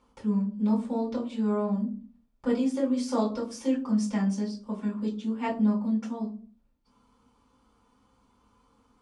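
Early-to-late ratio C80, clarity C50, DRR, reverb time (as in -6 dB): 16.0 dB, 10.5 dB, -5.5 dB, 0.40 s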